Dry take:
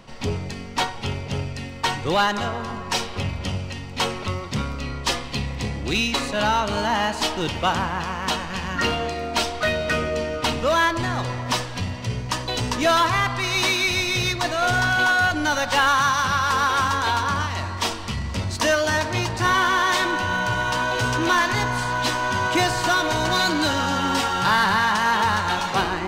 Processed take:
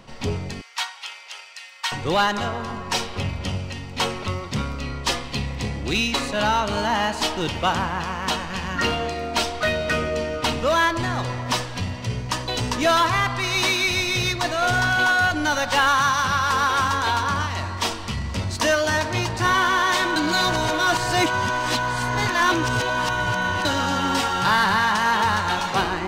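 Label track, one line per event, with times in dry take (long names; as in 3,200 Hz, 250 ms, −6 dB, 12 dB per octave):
0.610000	1.920000	Bessel high-pass filter 1,400 Hz, order 4
20.160000	23.650000	reverse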